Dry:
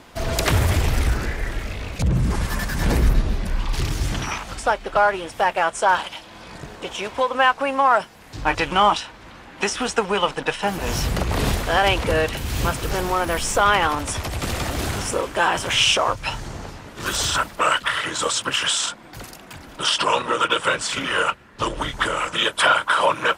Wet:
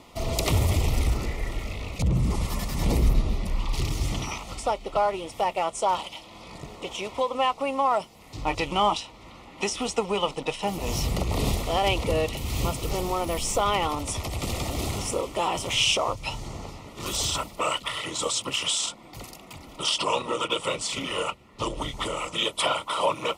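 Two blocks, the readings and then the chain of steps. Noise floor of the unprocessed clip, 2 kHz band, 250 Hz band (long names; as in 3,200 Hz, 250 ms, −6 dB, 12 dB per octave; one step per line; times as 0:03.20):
−43 dBFS, −11.5 dB, −3.5 dB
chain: Butterworth band-reject 1,600 Hz, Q 2.9
dynamic equaliser 1,500 Hz, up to −5 dB, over −35 dBFS, Q 1
level −3.5 dB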